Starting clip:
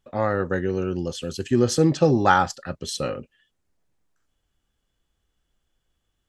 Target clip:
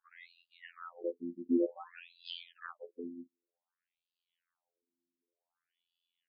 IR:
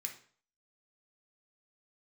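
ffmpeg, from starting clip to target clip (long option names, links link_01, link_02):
-filter_complex "[0:a]asplit=2[link_01][link_02];[link_02]acompressor=threshold=-32dB:ratio=6,volume=-0.5dB[link_03];[link_01][link_03]amix=inputs=2:normalize=0,asettb=1/sr,asplit=3[link_04][link_05][link_06];[link_04]atrim=end=1.834[link_07];[link_05]atrim=start=1.83:end=2.71,asetpts=PTS-STARTPTS,afade=type=in:duration=0.004:curve=qsin,afade=type=out:start_time=0.876:duration=0.004:curve=qsin,afreqshift=-72[link_08];[link_06]atrim=start=2.706[link_09];[link_07][link_08]acrossfade=duration=0.004:curve1=hsin:curve2=qsin[link_10];[link_10][link_09]acrossfade=duration=0.004:curve1=qsin:curve2=hsin,afftfilt=real='hypot(re,im)*cos(PI*b)':imag='0':win_size=2048:overlap=0.75,afftfilt=real='re*between(b*sr/1024,250*pow(3600/250,0.5+0.5*sin(2*PI*0.54*pts/sr))/1.41,250*pow(3600/250,0.5+0.5*sin(2*PI*0.54*pts/sr))*1.41)':imag='im*between(b*sr/1024,250*pow(3600/250,0.5+0.5*sin(2*PI*0.54*pts/sr))/1.41,250*pow(3600/250,0.5+0.5*sin(2*PI*0.54*pts/sr))*1.41)':win_size=1024:overlap=0.75,volume=-5dB"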